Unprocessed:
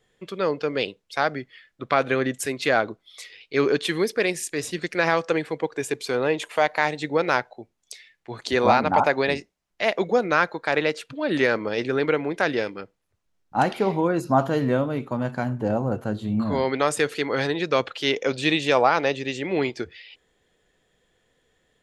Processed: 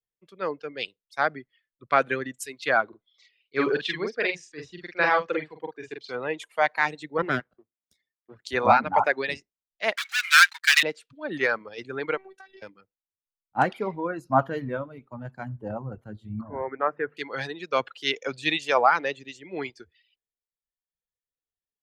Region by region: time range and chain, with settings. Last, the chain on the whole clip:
0:02.88–0:06.12: low-pass filter 5,100 Hz 24 dB per octave + double-tracking delay 46 ms −3 dB
0:07.18–0:08.44: lower of the sound and its delayed copy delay 0.57 ms + high-pass filter 230 Hz + spectral tilt −3 dB per octave
0:09.96–0:10.83: leveller curve on the samples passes 5 + inverse Chebyshev high-pass filter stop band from 490 Hz, stop band 60 dB
0:12.17–0:12.62: low-shelf EQ 220 Hz −10.5 dB + downward compressor 20 to 1, threshold −25 dBFS + phases set to zero 384 Hz
0:16.41–0:17.17: low-pass filter 1,700 Hz 24 dB per octave + hum removal 50.58 Hz, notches 5
whole clip: reverb reduction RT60 1.6 s; dynamic equaliser 1,500 Hz, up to +6 dB, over −34 dBFS, Q 0.74; multiband upward and downward expander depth 70%; level −6.5 dB

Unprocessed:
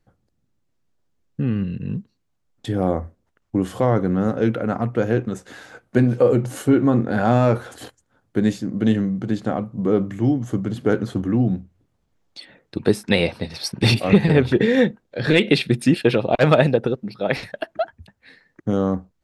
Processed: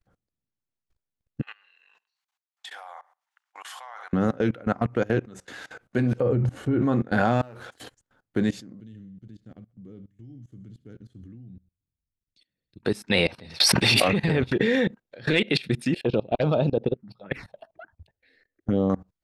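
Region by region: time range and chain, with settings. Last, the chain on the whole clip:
0:01.42–0:04.13: Chebyshev high-pass filter 810 Hz, order 4 + repeating echo 68 ms, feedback 27%, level −15.5 dB
0:06.20–0:06.82: low-pass filter 1,700 Hz 6 dB per octave + parametric band 64 Hz +14 dB 2.4 octaves
0:07.41–0:07.81: mu-law and A-law mismatch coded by A + downward compressor 5 to 1, threshold −31 dBFS + highs frequency-modulated by the lows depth 0.25 ms
0:08.80–0:12.83: guitar amp tone stack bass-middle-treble 10-0-1 + feedback echo with a high-pass in the loop 66 ms, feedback 46%, high-pass 350 Hz, level −16.5 dB
0:13.60–0:14.08: low-shelf EQ 360 Hz −9.5 dB + envelope flattener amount 100%
0:15.94–0:18.90: high-shelf EQ 2,400 Hz −10 dB + phaser swept by the level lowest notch 160 Hz, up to 1,900 Hz, full sweep at −14.5 dBFS
whole clip: output level in coarse steps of 22 dB; parametric band 2,700 Hz +4.5 dB 2.8 octaves

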